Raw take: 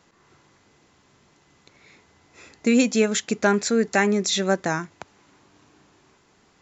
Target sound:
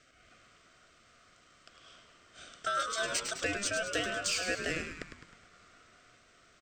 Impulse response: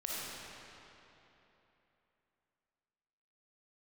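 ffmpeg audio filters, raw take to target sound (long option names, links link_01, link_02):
-filter_complex "[0:a]asettb=1/sr,asplit=3[link_01][link_02][link_03];[link_01]atrim=end=2.824[link_04];[link_02]atrim=start=2.82:end=4.98,asetpts=PTS-STARTPTS,afade=type=in:duration=0.004:curve=qsin,afade=type=out:start_time=2.156:duration=0.004:curve=qsin,highpass=590[link_05];[link_03]atrim=start=4.976[link_06];[link_04][link_05]acrossfade=duration=0.004:curve1=hsin:curve2=qsin[link_07];[link_07][link_06]acrossfade=duration=0.004:curve1=qsin:curve2=hsin,acompressor=threshold=-26dB:ratio=3,aeval=exprs='val(0)*sin(2*PI*1100*n/s)':channel_layout=same,asoftclip=type=tanh:threshold=-21dB,asuperstop=centerf=910:order=8:qfactor=2.3,asplit=7[link_08][link_09][link_10][link_11][link_12][link_13][link_14];[link_09]adelay=104,afreqshift=-98,volume=-7dB[link_15];[link_10]adelay=208,afreqshift=-196,volume=-12.5dB[link_16];[link_11]adelay=312,afreqshift=-294,volume=-18dB[link_17];[link_12]adelay=416,afreqshift=-392,volume=-23.5dB[link_18];[link_13]adelay=520,afreqshift=-490,volume=-29.1dB[link_19];[link_14]adelay=624,afreqshift=-588,volume=-34.6dB[link_20];[link_08][link_15][link_16][link_17][link_18][link_19][link_20]amix=inputs=7:normalize=0"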